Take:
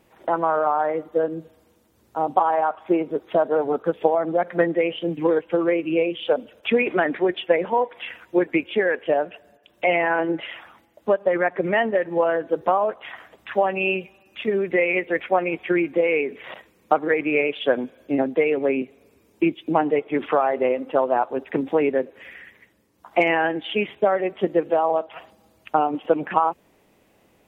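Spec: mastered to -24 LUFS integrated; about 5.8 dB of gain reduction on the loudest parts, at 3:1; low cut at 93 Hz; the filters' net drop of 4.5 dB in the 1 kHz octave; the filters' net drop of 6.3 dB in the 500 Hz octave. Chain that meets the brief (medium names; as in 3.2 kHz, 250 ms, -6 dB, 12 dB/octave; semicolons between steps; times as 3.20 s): high-pass 93 Hz; peaking EQ 500 Hz -7 dB; peaking EQ 1 kHz -3 dB; compression 3:1, threshold -26 dBFS; trim +7 dB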